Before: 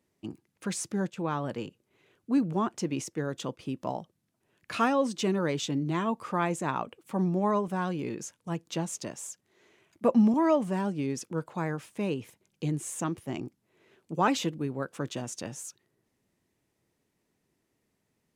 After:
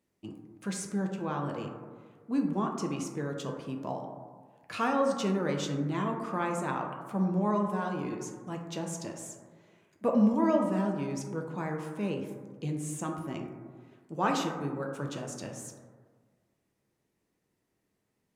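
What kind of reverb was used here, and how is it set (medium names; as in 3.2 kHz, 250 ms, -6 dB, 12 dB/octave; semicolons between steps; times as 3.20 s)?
plate-style reverb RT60 1.6 s, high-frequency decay 0.25×, DRR 1.5 dB; trim -4.5 dB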